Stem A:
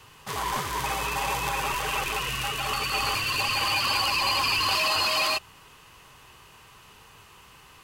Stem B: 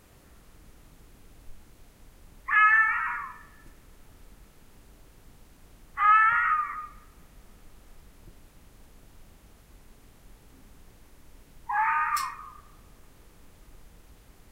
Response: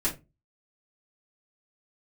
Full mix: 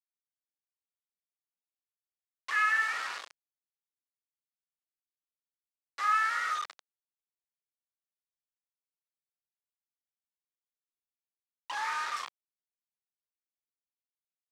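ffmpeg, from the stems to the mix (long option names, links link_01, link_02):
-filter_complex "[0:a]aeval=exprs='0.0531*(abs(mod(val(0)/0.0531+3,4)-2)-1)':channel_layout=same,adelay=300,volume=-11.5dB[link_01];[1:a]highpass=frequency=790:poles=1,volume=-2dB[link_02];[link_01][link_02]amix=inputs=2:normalize=0,flanger=delay=3.3:depth=9.9:regen=-77:speed=0.57:shape=triangular,acrusher=bits=5:mix=0:aa=0.000001,highpass=550,lowpass=5400"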